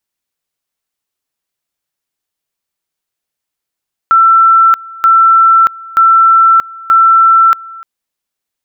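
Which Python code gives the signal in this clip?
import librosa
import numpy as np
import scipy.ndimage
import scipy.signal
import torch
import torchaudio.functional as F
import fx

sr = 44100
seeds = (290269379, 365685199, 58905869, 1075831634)

y = fx.two_level_tone(sr, hz=1340.0, level_db=-3.0, drop_db=23.0, high_s=0.63, low_s=0.3, rounds=4)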